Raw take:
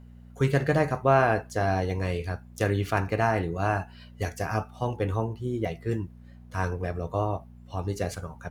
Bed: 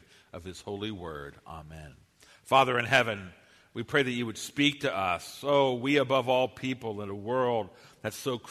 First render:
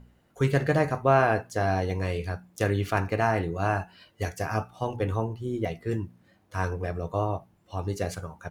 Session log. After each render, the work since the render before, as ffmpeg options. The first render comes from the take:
-af "bandreject=f=60:t=h:w=4,bandreject=f=120:t=h:w=4,bandreject=f=180:t=h:w=4,bandreject=f=240:t=h:w=4"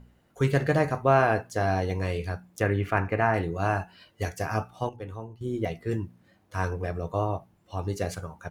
-filter_complex "[0:a]asettb=1/sr,asplit=3[s0][s1][s2];[s0]atrim=end=2.604[s3];[s1]atrim=start=2.6:end=3.34,asetpts=PTS-STARTPTS,afade=t=in:d=0.004:c=qsin,afade=t=out:st=0.736:d=0.004:c=qsin,highshelf=f=3000:t=q:w=1.5:g=-9.5[s4];[s2]atrim=start=3.336[s5];[s3][s4]acrossfade=d=0.004:c1=hsin:c2=qsin[s6];[s6][s5]acrossfade=d=0.004:c1=qsin:c2=hsin,asplit=3[s7][s8][s9];[s7]atrim=end=4.892[s10];[s8]atrim=start=4.888:end=5.412,asetpts=PTS-STARTPTS,volume=0.299[s11];[s9]atrim=start=5.408[s12];[s10][s11]acrossfade=d=0.004:c1=hsin:c2=hsin[s13];[s13][s12]acrossfade=d=0.004:c1=hsin:c2=hsin"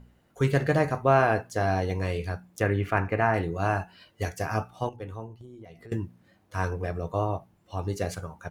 -filter_complex "[0:a]asettb=1/sr,asplit=3[s0][s1][s2];[s0]atrim=end=5.384[s3];[s1]atrim=start=5.38:end=5.92,asetpts=PTS-STARTPTS,afade=t=in:d=0.004:c=qsin,afade=t=out:st=0.536:d=0.004:c=qsin,acompressor=threshold=0.00794:ratio=12:attack=3.2:release=140:knee=1:detection=peak[s4];[s2]atrim=start=5.916[s5];[s3][s4]acrossfade=d=0.004:c1=hsin:c2=qsin[s6];[s6][s5]acrossfade=d=0.004:c1=qsin:c2=hsin"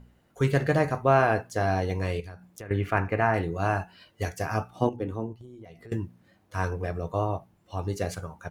-filter_complex "[0:a]asettb=1/sr,asplit=3[s0][s1][s2];[s0]atrim=end=2.204[s3];[s1]atrim=start=2.2:end=2.71,asetpts=PTS-STARTPTS,afade=t=in:d=0.004:c=qsin,afade=t=out:st=0.506:d=0.004:c=qsin,acompressor=threshold=0.01:ratio=4:attack=3.2:release=140:knee=1:detection=peak[s4];[s2]atrim=start=2.706[s5];[s3][s4]acrossfade=d=0.004:c1=hsin:c2=qsin[s6];[s6][s5]acrossfade=d=0.004:c1=qsin:c2=hsin,asettb=1/sr,asplit=3[s7][s8][s9];[s7]atrim=end=4.754[s10];[s8]atrim=start=4.75:end=5.33,asetpts=PTS-STARTPTS,afade=t=in:d=0.004:c=qsin,afade=t=out:st=0.576:d=0.004:c=qsin,equalizer=f=270:w=0.81:g=12[s11];[s9]atrim=start=5.326[s12];[s10][s11]acrossfade=d=0.004:c1=hsin:c2=qsin[s13];[s13][s12]acrossfade=d=0.004:c1=qsin:c2=hsin"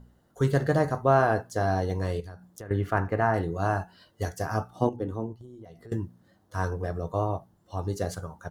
-af "equalizer=f=2400:t=o:w=0.42:g=-15"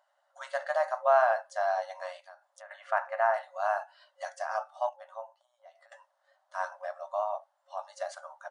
-af "afftfilt=real='re*between(b*sr/4096,540,10000)':imag='im*between(b*sr/4096,540,10000)':win_size=4096:overlap=0.75,highshelf=f=3900:g=-10"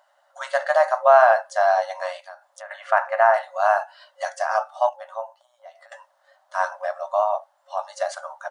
-af "volume=3.35,alimiter=limit=0.708:level=0:latency=1"

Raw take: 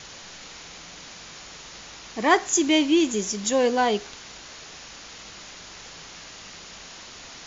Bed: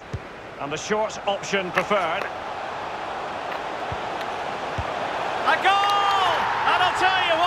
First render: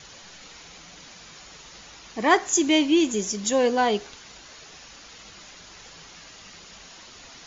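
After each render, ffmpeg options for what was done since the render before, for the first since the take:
-af "afftdn=nr=6:nf=-43"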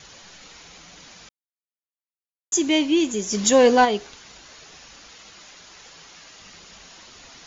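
-filter_complex "[0:a]asplit=3[s0][s1][s2];[s0]afade=t=out:st=3.31:d=0.02[s3];[s1]acontrast=83,afade=t=in:st=3.31:d=0.02,afade=t=out:st=3.84:d=0.02[s4];[s2]afade=t=in:st=3.84:d=0.02[s5];[s3][s4][s5]amix=inputs=3:normalize=0,asettb=1/sr,asplit=3[s6][s7][s8];[s6]atrim=end=5.124[s9];[s7]atrim=start=5.12:end=6.39,asetpts=PTS-STARTPTS,afade=t=in:d=0.004:c=qsin,afade=t=out:st=1.266:d=0.004:c=qsin,lowshelf=f=210:g=-7[s10];[s8]atrim=start=6.386[s11];[s9][s10]acrossfade=d=0.004:c1=hsin:c2=qsin[s12];[s12][s11]acrossfade=d=0.004:c1=qsin:c2=hsin,asplit=3[s13][s14][s15];[s13]atrim=end=1.29,asetpts=PTS-STARTPTS,afade=t=out:st=1.286:d=0.004:c=hsin[s16];[s14]atrim=start=1.29:end=2.52,asetpts=PTS-STARTPTS,volume=0[s17];[s15]atrim=start=2.52,asetpts=PTS-STARTPTS,afade=t=in:d=0.004:c=hsin[s18];[s16][s17][s18]concat=n=3:v=0:a=1"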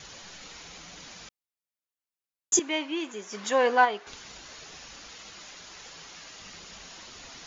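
-filter_complex "[0:a]asettb=1/sr,asplit=3[s0][s1][s2];[s0]atrim=end=2.594[s3];[s1]atrim=start=2.59:end=4.07,asetpts=PTS-STARTPTS,afade=t=in:d=0.004:c=qsin,afade=t=out:st=1.476:d=0.004:c=qsin,bandpass=f=1300:t=q:w=1.2[s4];[s2]atrim=start=4.066[s5];[s3][s4]acrossfade=d=0.004:c1=hsin:c2=qsin[s6];[s6][s5]acrossfade=d=0.004:c1=qsin:c2=hsin"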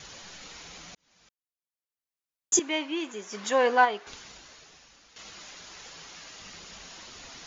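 -filter_complex "[0:a]asplit=3[s0][s1][s2];[s0]atrim=end=0.95,asetpts=PTS-STARTPTS,afade=t=out:st=0.946:d=0.004:c=hsin[s3];[s1]atrim=start=0.95:end=5.16,asetpts=PTS-STARTPTS,afade=t=in:d=1.61,afade=t=out:st=3.19:d=1.02:c=qua:silence=0.251189[s4];[s2]atrim=start=5.16,asetpts=PTS-STARTPTS,afade=t=in:d=0.004:c=hsin:silence=0.251189[s5];[s3][s4][s5]concat=n=3:v=0:a=1"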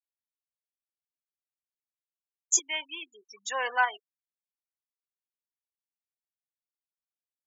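-af "afftfilt=real='re*gte(hypot(re,im),0.0355)':imag='im*gte(hypot(re,im),0.0355)':win_size=1024:overlap=0.75,highpass=1100"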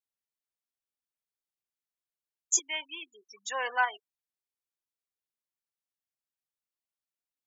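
-af "volume=0.794"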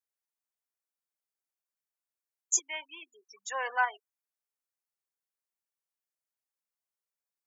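-af "highpass=420,equalizer=f=3400:w=1.5:g=-7.5"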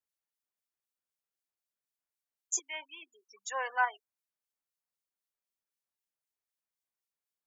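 -filter_complex "[0:a]acrossover=split=2200[s0][s1];[s0]aeval=exprs='val(0)*(1-0.5/2+0.5/2*cos(2*PI*3.9*n/s))':c=same[s2];[s1]aeval=exprs='val(0)*(1-0.5/2-0.5/2*cos(2*PI*3.9*n/s))':c=same[s3];[s2][s3]amix=inputs=2:normalize=0"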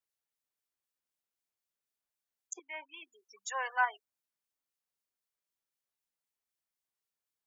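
-filter_complex "[0:a]asettb=1/sr,asplit=3[s0][s1][s2];[s0]atrim=end=2.534[s3];[s1]atrim=start=2.53:end=2.94,asetpts=PTS-STARTPTS,afade=t=in:d=0.004:c=qsin,afade=t=out:st=0.406:d=0.004:c=qsin,lowpass=f=2300:w=0.5412,lowpass=f=2300:w=1.3066[s4];[s2]atrim=start=2.936[s5];[s3][s4]acrossfade=d=0.004:c1=hsin:c2=qsin[s6];[s6][s5]acrossfade=d=0.004:c1=qsin:c2=hsin,asplit=3[s7][s8][s9];[s7]afade=t=out:st=3.47:d=0.02[s10];[s8]highpass=580,afade=t=in:st=3.47:d=0.02,afade=t=out:st=3.87:d=0.02[s11];[s9]afade=t=in:st=3.87:d=0.02[s12];[s10][s11][s12]amix=inputs=3:normalize=0"

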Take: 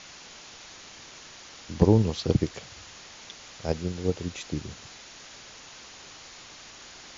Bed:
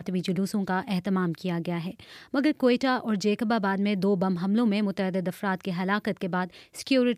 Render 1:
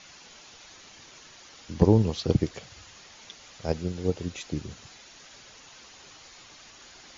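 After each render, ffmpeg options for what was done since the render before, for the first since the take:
-af "afftdn=nr=6:nf=-47"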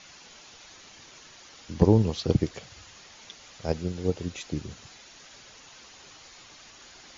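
-af anull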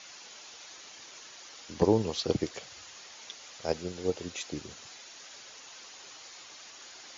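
-af "highpass=52,bass=f=250:g=-12,treble=f=4000:g=3"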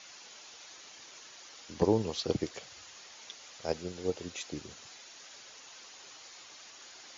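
-af "volume=0.75"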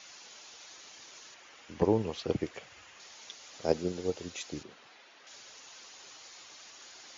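-filter_complex "[0:a]asettb=1/sr,asplit=3[s0][s1][s2];[s0]atrim=end=1.344[s3];[s1]atrim=start=1.34:end=3,asetpts=PTS-STARTPTS,afade=t=in:d=0.004:c=qsin,afade=t=out:st=1.656:d=0.004:c=qsin,highshelf=f=3300:t=q:w=1.5:g=-6.5[s4];[s2]atrim=start=2.996[s5];[s3][s4]acrossfade=d=0.004:c1=hsin:c2=qsin[s6];[s6][s5]acrossfade=d=0.004:c1=qsin:c2=hsin,asettb=1/sr,asplit=3[s7][s8][s9];[s7]atrim=end=3.534[s10];[s8]atrim=start=3.53:end=4.01,asetpts=PTS-STARTPTS,afade=t=in:d=0.004:c=qsin,afade=t=out:st=0.476:d=0.004:c=qsin,equalizer=f=290:w=0.56:g=8[s11];[s9]atrim=start=4.006[s12];[s10][s11]acrossfade=d=0.004:c1=hsin:c2=qsin[s13];[s13][s12]acrossfade=d=0.004:c1=qsin:c2=hsin,asettb=1/sr,asplit=3[s14][s15][s16];[s14]atrim=end=4.634[s17];[s15]atrim=start=4.63:end=5.27,asetpts=PTS-STARTPTS,afade=t=in:d=0.004:c=qsin,afade=t=out:st=0.636:d=0.004:c=qsin,highpass=210,lowpass=2800[s18];[s16]atrim=start=5.266[s19];[s17][s18]acrossfade=d=0.004:c1=hsin:c2=qsin[s20];[s20][s19]acrossfade=d=0.004:c1=qsin:c2=hsin"

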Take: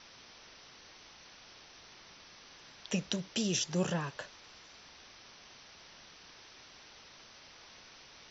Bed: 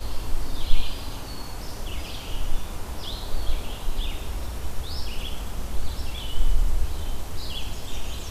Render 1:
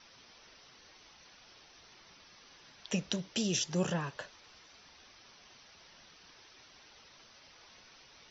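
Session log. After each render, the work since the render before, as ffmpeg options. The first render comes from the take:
-af "afftdn=nr=6:nf=-56"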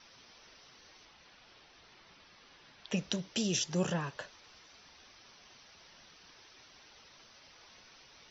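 -filter_complex "[0:a]asettb=1/sr,asplit=3[s0][s1][s2];[s0]atrim=end=1.054[s3];[s1]atrim=start=1.05:end=2.97,asetpts=PTS-STARTPTS,afade=t=in:d=0.004:c=qsin,afade=t=out:st=1.916:d=0.004:c=qsin,lowpass=4500[s4];[s2]atrim=start=2.966[s5];[s3][s4]acrossfade=d=0.004:c1=hsin:c2=qsin[s6];[s6][s5]acrossfade=d=0.004:c1=qsin:c2=hsin"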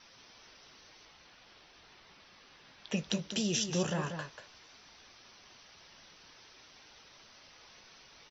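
-filter_complex "[0:a]asplit=2[s0][s1];[s1]adelay=19,volume=0.224[s2];[s0][s2]amix=inputs=2:normalize=0,asplit=2[s3][s4];[s4]aecho=0:1:188:0.398[s5];[s3][s5]amix=inputs=2:normalize=0"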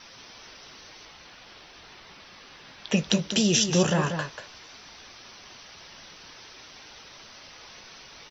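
-af "volume=3.16"

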